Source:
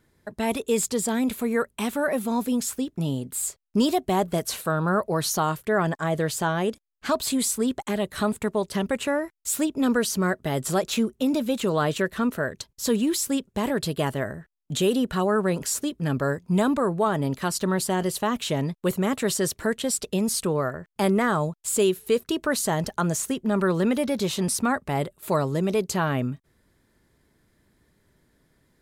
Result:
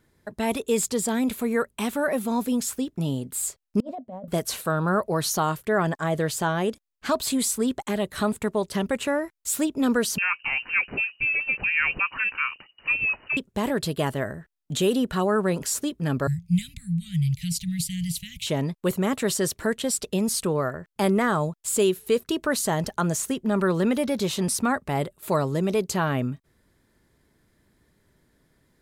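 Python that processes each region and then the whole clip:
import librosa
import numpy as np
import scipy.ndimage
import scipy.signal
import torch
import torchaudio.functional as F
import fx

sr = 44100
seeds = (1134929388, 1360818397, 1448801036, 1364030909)

y = fx.chain(x, sr, fx.double_bandpass(hz=360.0, octaves=1.2),
    fx.over_compress(threshold_db=-38.0, ratio=-1.0), at=(3.8, 4.28))
y = fx.chain(y, sr, fx.law_mismatch(coded='mu'),
    fx.peak_eq(hz=190.0, db=-6.5, octaves=0.96),
    fx.freq_invert(carrier_hz=2900), at=(10.18, 13.37))
y = fx.chain(y, sr, fx.cheby1_bandstop(low_hz=170.0, high_hz=2100.0, order=5),
    fx.low_shelf(hz=390.0, db=8.5), at=(16.27, 18.47))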